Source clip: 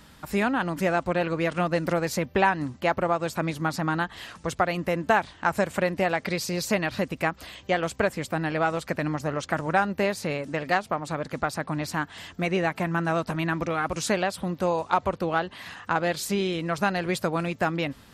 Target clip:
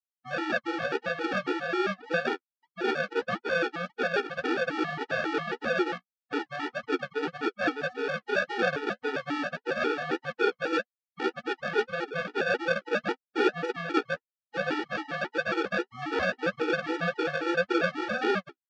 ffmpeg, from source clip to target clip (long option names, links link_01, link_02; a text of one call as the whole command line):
ffmpeg -i in.wav -filter_complex "[0:a]areverse,afftfilt=real='re*gte(hypot(re,im),0.0794)':imag='im*gte(hypot(re,im),0.0794)':win_size=1024:overlap=0.75,asplit=2[link_01][link_02];[link_02]acompressor=threshold=-35dB:ratio=16,volume=0.5dB[link_03];[link_01][link_03]amix=inputs=2:normalize=0,acrusher=samples=42:mix=1:aa=0.000001,asoftclip=type=tanh:threshold=-12.5dB,flanger=delay=7.2:depth=9.4:regen=21:speed=1.8:shape=triangular,asetrate=42777,aresample=44100,highpass=440,equalizer=frequency=660:width_type=q:width=4:gain=-9,equalizer=frequency=1700:width_type=q:width=4:gain=3,equalizer=frequency=2500:width_type=q:width=4:gain=-4,equalizer=frequency=3800:width_type=q:width=4:gain=-6,lowpass=frequency=4000:width=0.5412,lowpass=frequency=4000:width=1.3066,afftfilt=real='re*gt(sin(2*PI*3.7*pts/sr)*(1-2*mod(floor(b*sr/1024/250),2)),0)':imag='im*gt(sin(2*PI*3.7*pts/sr)*(1-2*mod(floor(b*sr/1024/250),2)),0)':win_size=1024:overlap=0.75,volume=9dB" out.wav